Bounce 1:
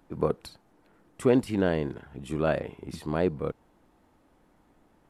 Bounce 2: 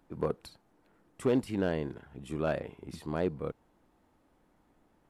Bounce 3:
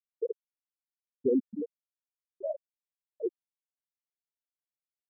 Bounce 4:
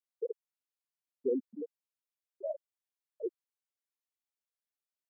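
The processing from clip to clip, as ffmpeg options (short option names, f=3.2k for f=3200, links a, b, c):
-af "volume=14.5dB,asoftclip=hard,volume=-14.5dB,volume=-5dB"
-af "afftfilt=real='re*gte(hypot(re,im),0.251)':imag='im*gte(hypot(re,im),0.251)':win_size=1024:overlap=0.75,volume=2.5dB"
-af "highpass=340,volume=-2.5dB"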